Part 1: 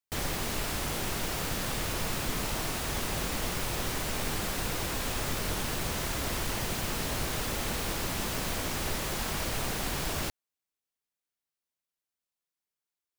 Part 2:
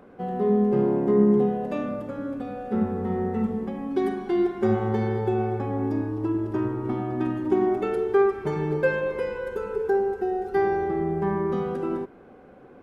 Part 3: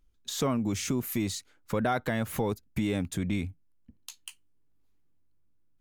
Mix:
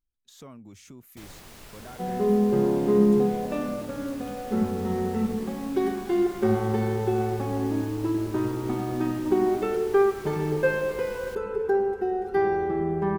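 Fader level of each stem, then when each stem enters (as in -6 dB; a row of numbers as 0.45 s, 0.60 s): -14.0 dB, -0.5 dB, -17.5 dB; 1.05 s, 1.80 s, 0.00 s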